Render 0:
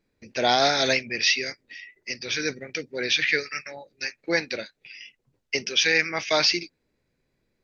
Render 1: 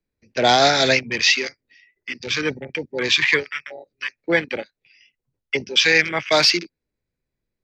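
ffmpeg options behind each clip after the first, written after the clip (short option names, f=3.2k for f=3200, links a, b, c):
-filter_complex "[0:a]afwtdn=0.0251,acrossover=split=110|390|3200[a][b][c][d];[a]acontrast=82[e];[e][b][c][d]amix=inputs=4:normalize=0,volume=5.5dB"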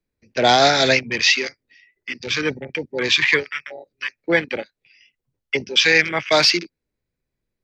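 -af "highshelf=f=8.2k:g=-3.5,volume=1dB"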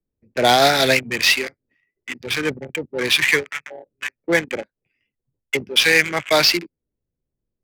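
-af "adynamicsmooth=sensitivity=2.5:basefreq=830"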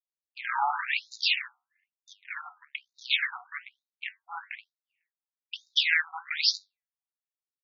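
-af "aeval=exprs='val(0)*sin(2*PI*160*n/s)':c=same,flanger=delay=9.9:depth=8.7:regen=-73:speed=0.46:shape=sinusoidal,afftfilt=real='re*between(b*sr/1024,990*pow(5200/990,0.5+0.5*sin(2*PI*1.1*pts/sr))/1.41,990*pow(5200/990,0.5+0.5*sin(2*PI*1.1*pts/sr))*1.41)':imag='im*between(b*sr/1024,990*pow(5200/990,0.5+0.5*sin(2*PI*1.1*pts/sr))/1.41,990*pow(5200/990,0.5+0.5*sin(2*PI*1.1*pts/sr))*1.41)':win_size=1024:overlap=0.75"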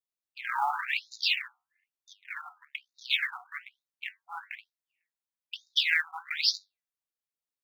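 -af "acrusher=bits=8:mode=log:mix=0:aa=0.000001,volume=-1.5dB"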